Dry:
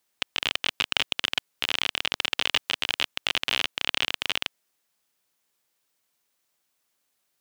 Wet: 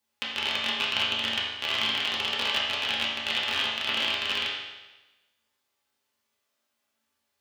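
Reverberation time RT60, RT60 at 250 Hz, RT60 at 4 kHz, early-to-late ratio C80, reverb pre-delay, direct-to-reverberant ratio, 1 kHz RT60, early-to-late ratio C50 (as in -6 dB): 1.1 s, 1.1 s, 1.1 s, 3.0 dB, 4 ms, -7.0 dB, 1.1 s, 0.5 dB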